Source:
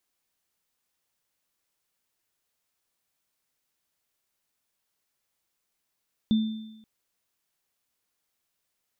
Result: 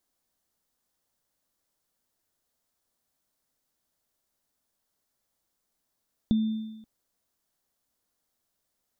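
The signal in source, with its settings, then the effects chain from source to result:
inharmonic partials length 0.53 s, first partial 219 Hz, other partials 3,560 Hz, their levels −18 dB, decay 0.92 s, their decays 1.05 s, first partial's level −17 dB
graphic EQ with 15 bands 250 Hz +5 dB, 630 Hz +4 dB, 2,500 Hz −7 dB
downward compressor 4 to 1, threshold −24 dBFS
low-shelf EQ 84 Hz +7.5 dB

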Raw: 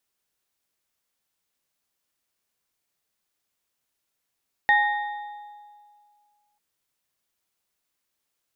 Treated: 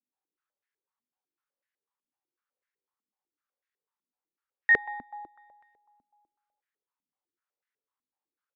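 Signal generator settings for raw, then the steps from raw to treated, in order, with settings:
inharmonic partials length 1.89 s, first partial 831 Hz, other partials 1,860/3,630 Hz, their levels 3.5/−16 dB, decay 2.11 s, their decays 1.12/1.54 s, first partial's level −18.5 dB
Butterworth band-reject 660 Hz, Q 5.6
double-tracking delay 20 ms −3 dB
band-pass on a step sequencer 8 Hz 250–1,800 Hz

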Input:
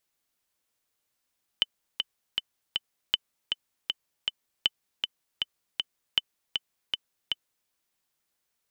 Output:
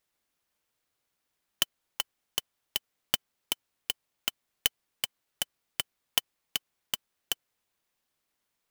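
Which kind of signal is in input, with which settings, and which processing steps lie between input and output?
click track 158 BPM, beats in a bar 4, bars 4, 3,030 Hz, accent 5 dB −8.5 dBFS
converter with an unsteady clock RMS 0.041 ms

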